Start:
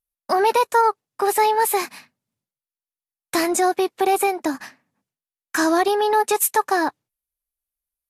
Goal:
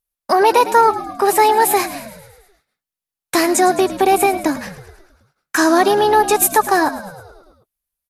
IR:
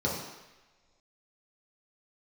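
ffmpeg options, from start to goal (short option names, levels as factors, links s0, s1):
-filter_complex "[0:a]asplit=8[s0][s1][s2][s3][s4][s5][s6][s7];[s1]adelay=107,afreqshift=-58,volume=0.2[s8];[s2]adelay=214,afreqshift=-116,volume=0.122[s9];[s3]adelay=321,afreqshift=-174,volume=0.0741[s10];[s4]adelay=428,afreqshift=-232,volume=0.0452[s11];[s5]adelay=535,afreqshift=-290,volume=0.0275[s12];[s6]adelay=642,afreqshift=-348,volume=0.0168[s13];[s7]adelay=749,afreqshift=-406,volume=0.0102[s14];[s0][s8][s9][s10][s11][s12][s13][s14]amix=inputs=8:normalize=0,volume=1.78"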